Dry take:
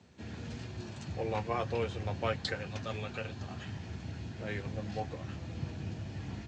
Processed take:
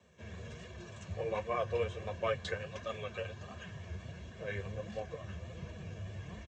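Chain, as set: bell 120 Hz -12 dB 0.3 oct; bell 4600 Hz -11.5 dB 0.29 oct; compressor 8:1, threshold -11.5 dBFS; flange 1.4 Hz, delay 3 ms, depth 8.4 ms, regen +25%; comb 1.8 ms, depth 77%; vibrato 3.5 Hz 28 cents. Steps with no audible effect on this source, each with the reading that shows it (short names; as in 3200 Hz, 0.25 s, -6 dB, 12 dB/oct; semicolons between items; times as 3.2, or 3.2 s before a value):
compressor, threshold -11.5 dBFS: input peak -20.0 dBFS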